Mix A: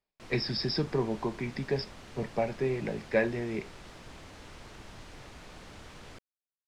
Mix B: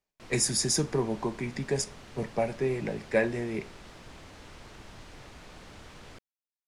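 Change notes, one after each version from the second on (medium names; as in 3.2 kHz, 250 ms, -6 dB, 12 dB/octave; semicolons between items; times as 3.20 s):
speech: remove brick-wall FIR low-pass 5.5 kHz; reverb: on, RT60 0.65 s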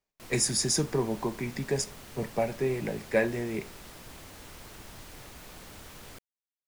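background: remove distance through air 78 m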